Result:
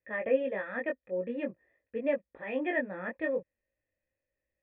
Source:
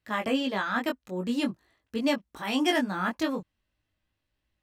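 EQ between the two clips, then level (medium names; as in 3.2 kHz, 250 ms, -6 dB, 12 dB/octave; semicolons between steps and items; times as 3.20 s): cascade formant filter e; +8.0 dB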